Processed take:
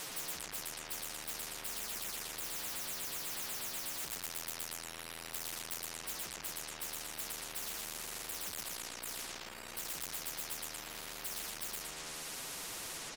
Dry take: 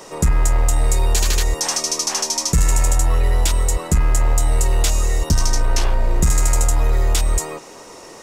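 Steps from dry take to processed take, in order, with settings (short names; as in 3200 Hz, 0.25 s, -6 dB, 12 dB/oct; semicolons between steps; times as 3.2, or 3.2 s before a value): spectral delay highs early, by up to 0.118 s; reverb removal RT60 0.66 s; compressor 5:1, threshold -26 dBFS, peak gain reduction 13.5 dB; time stretch by phase-locked vocoder 1.6×; on a send: feedback echo 0.116 s, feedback 25%, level -5.5 dB; on the sum: soft clip -30.5 dBFS, distortion -10 dB; spectral compressor 10:1; gain +9 dB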